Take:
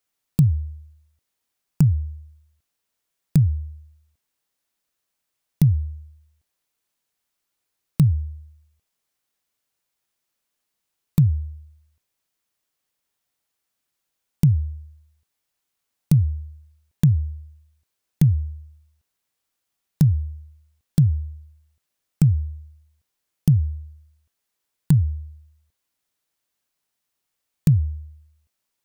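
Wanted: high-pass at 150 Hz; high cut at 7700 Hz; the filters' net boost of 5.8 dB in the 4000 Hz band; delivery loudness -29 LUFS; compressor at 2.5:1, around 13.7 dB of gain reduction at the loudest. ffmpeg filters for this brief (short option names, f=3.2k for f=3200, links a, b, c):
-af "highpass=150,lowpass=7.7k,equalizer=f=4k:t=o:g=7.5,acompressor=threshold=-36dB:ratio=2.5,volume=10dB"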